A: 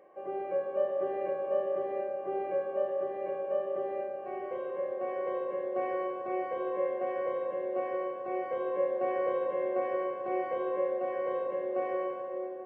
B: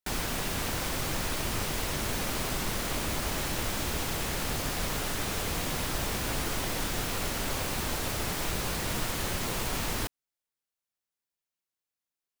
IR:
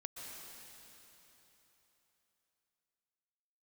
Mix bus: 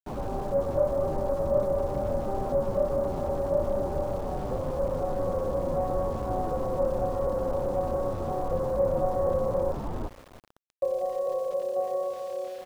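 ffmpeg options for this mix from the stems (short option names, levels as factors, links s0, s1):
-filter_complex "[0:a]aecho=1:1:1.6:0.91,volume=0.891,asplit=3[s0][s1][s2];[s0]atrim=end=9.72,asetpts=PTS-STARTPTS,afade=t=out:st=9.716:d=0.004:c=hsin[s3];[s1]atrim=start=9.72:end=10.82,asetpts=PTS-STARTPTS,volume=0[s4];[s2]atrim=start=10.82,asetpts=PTS-STARTPTS,afade=t=in:d=0.004:c=hsin[s5];[s3][s4][s5]concat=n=3:v=0:a=1,asplit=2[s6][s7];[s7]volume=0.141[s8];[1:a]asplit=2[s9][s10];[s10]adelay=9,afreqshift=-2.8[s11];[s9][s11]amix=inputs=2:normalize=1,volume=1.33,asplit=2[s12][s13];[s13]volume=0.422[s14];[2:a]atrim=start_sample=2205[s15];[s8][s14]amix=inputs=2:normalize=0[s16];[s16][s15]afir=irnorm=-1:irlink=0[s17];[s6][s12][s17]amix=inputs=3:normalize=0,lowpass=f=1000:w=0.5412,lowpass=f=1000:w=1.3066,aeval=exprs='val(0)*gte(abs(val(0)),0.00631)':c=same"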